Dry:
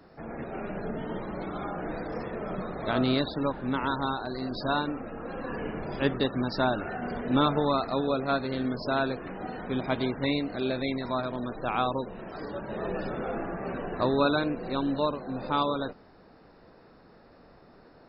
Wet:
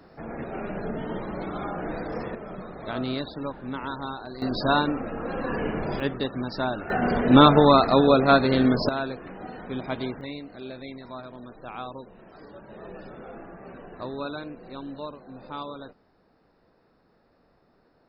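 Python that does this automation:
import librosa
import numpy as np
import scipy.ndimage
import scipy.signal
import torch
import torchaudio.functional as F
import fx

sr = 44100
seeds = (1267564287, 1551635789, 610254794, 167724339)

y = fx.gain(x, sr, db=fx.steps((0.0, 2.5), (2.35, -4.0), (4.42, 6.0), (6.0, -1.5), (6.9, 10.0), (8.89, -2.0), (10.21, -9.0)))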